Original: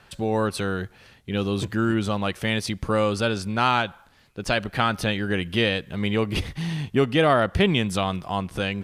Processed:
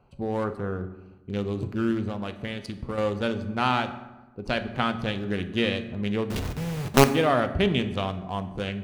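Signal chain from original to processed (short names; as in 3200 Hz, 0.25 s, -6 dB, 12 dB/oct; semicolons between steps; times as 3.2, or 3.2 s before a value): Wiener smoothing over 25 samples; 0.44–0.84 resonant high shelf 2100 Hz -13.5 dB, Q 1.5; 2.08–2.98 compressor, threshold -25 dBFS, peak gain reduction 6.5 dB; 6.3–7.09 companded quantiser 2-bit; reverb RT60 1.1 s, pre-delay 4 ms, DRR 8 dB; gain -3.5 dB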